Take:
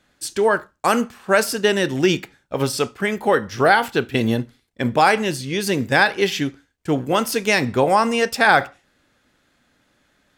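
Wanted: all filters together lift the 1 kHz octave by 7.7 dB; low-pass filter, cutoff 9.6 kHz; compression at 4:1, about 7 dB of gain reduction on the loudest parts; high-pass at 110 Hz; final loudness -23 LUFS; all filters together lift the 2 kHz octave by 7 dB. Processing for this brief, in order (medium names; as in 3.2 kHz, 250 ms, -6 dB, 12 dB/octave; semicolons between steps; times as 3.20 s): high-pass 110 Hz; low-pass 9.6 kHz; peaking EQ 1 kHz +9 dB; peaking EQ 2 kHz +5.5 dB; compression 4:1, threshold -11 dBFS; trim -5 dB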